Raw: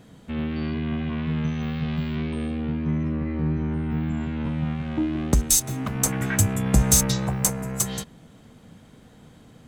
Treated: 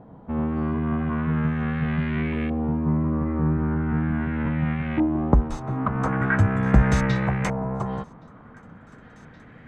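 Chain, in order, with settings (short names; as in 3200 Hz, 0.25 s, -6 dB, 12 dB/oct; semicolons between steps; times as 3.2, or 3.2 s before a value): thin delay 1.121 s, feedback 64%, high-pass 1500 Hz, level -21 dB; LFO low-pass saw up 0.4 Hz 860–2200 Hz; gain +2 dB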